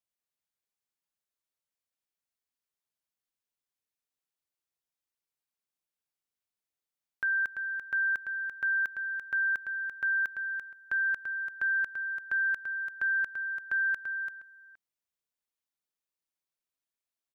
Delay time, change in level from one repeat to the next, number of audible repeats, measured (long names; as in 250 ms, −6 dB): 339 ms, repeats not evenly spaced, 1